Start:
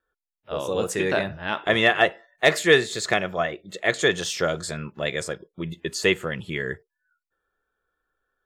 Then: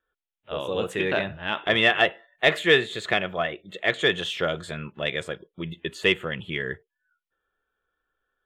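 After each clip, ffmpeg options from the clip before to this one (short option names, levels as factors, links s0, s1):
-filter_complex "[0:a]highshelf=f=4100:t=q:w=3:g=-8,asplit=2[s0][s1];[s1]asoftclip=type=tanh:threshold=0.316,volume=0.398[s2];[s0][s2]amix=inputs=2:normalize=0,volume=0.562"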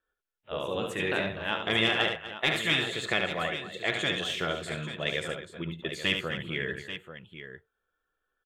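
-filter_complex "[0:a]afftfilt=real='re*lt(hypot(re,im),0.447)':imag='im*lt(hypot(re,im),0.447)':win_size=1024:overlap=0.75,asplit=2[s0][s1];[s1]aecho=0:1:72|249|838:0.473|0.2|0.282[s2];[s0][s2]amix=inputs=2:normalize=0,adynamicequalizer=threshold=0.0141:dfrequency=5900:dqfactor=0.7:tfrequency=5900:tqfactor=0.7:attack=5:release=100:ratio=0.375:range=2.5:mode=boostabove:tftype=highshelf,volume=0.668"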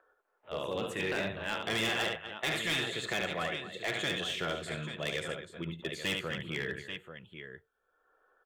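-filter_complex "[0:a]acrossover=split=410|1300[s0][s1][s2];[s1]acompressor=mode=upward:threshold=0.00398:ratio=2.5[s3];[s0][s3][s2]amix=inputs=3:normalize=0,asoftclip=type=hard:threshold=0.0631,volume=0.708"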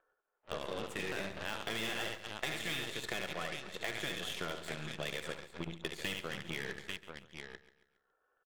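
-af "acompressor=threshold=0.01:ratio=3,aeval=exprs='0.0355*(cos(1*acos(clip(val(0)/0.0355,-1,1)))-cos(1*PI/2))+0.00631*(cos(3*acos(clip(val(0)/0.0355,-1,1)))-cos(3*PI/2))+0.000251*(cos(5*acos(clip(val(0)/0.0355,-1,1)))-cos(5*PI/2))+0.00158*(cos(7*acos(clip(val(0)/0.0355,-1,1)))-cos(7*PI/2))+0.00178*(cos(8*acos(clip(val(0)/0.0355,-1,1)))-cos(8*PI/2))':c=same,aecho=1:1:138|276|414|552:0.158|0.0713|0.0321|0.0144,volume=1.88"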